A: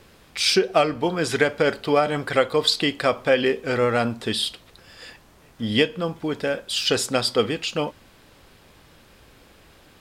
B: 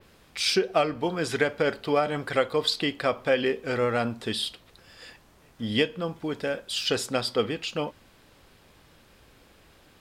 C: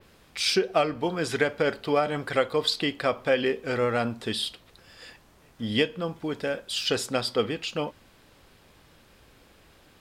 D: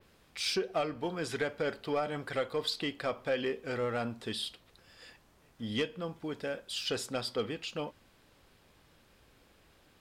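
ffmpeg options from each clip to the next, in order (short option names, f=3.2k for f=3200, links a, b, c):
-af "adynamicequalizer=threshold=0.00794:dfrequency=8000:dqfactor=0.76:tfrequency=8000:tqfactor=0.76:attack=5:release=100:ratio=0.375:range=3:mode=cutabove:tftype=bell,volume=-4.5dB"
-af anull
-af "asoftclip=type=tanh:threshold=-14.5dB,volume=-7dB"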